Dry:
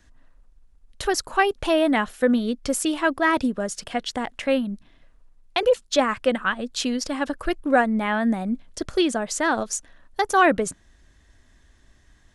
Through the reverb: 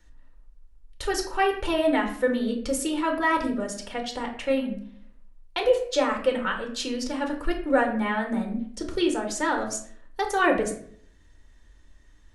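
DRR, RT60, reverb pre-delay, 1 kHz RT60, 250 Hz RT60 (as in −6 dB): 2.5 dB, 0.60 s, 3 ms, 0.55 s, 0.70 s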